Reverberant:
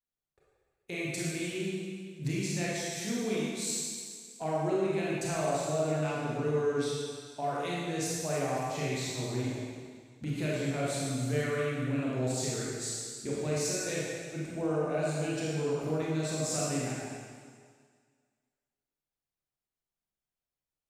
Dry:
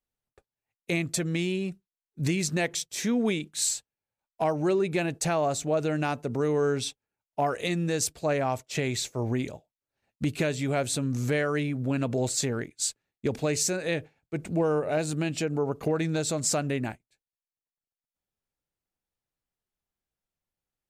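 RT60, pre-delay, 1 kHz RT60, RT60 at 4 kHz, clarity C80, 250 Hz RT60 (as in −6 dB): 1.9 s, 25 ms, 1.9 s, 1.9 s, −0.5 dB, 1.8 s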